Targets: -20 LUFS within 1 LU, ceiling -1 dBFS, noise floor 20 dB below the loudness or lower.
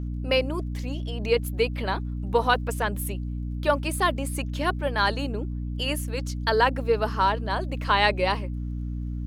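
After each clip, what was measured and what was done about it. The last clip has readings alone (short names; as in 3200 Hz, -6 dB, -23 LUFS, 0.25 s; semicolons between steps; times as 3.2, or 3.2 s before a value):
ticks 20/s; hum 60 Hz; harmonics up to 300 Hz; hum level -28 dBFS; loudness -26.0 LUFS; peak -5.5 dBFS; loudness target -20.0 LUFS
-> de-click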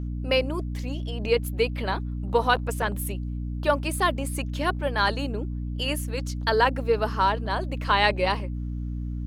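ticks 0.76/s; hum 60 Hz; harmonics up to 300 Hz; hum level -28 dBFS
-> de-hum 60 Hz, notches 5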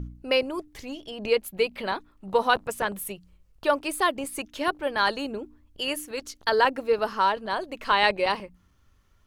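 hum none; loudness -26.5 LUFS; peak -6.0 dBFS; loudness target -20.0 LUFS
-> gain +6.5 dB; limiter -1 dBFS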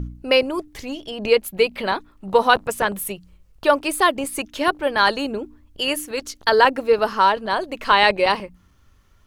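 loudness -20.0 LUFS; peak -1.0 dBFS; noise floor -56 dBFS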